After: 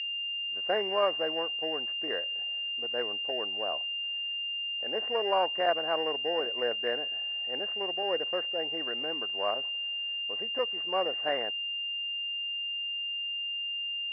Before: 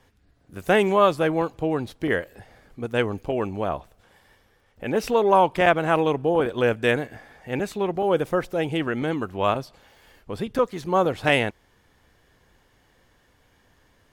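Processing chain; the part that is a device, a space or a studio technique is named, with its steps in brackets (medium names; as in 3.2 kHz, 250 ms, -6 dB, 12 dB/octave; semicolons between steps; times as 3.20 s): toy sound module (decimation joined by straight lines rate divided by 8×; class-D stage that switches slowly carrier 2.8 kHz; cabinet simulation 790–4500 Hz, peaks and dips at 910 Hz -9 dB, 1.3 kHz -8 dB, 1.9 kHz +5 dB, 2.6 kHz -7 dB, 4 kHz -10 dB)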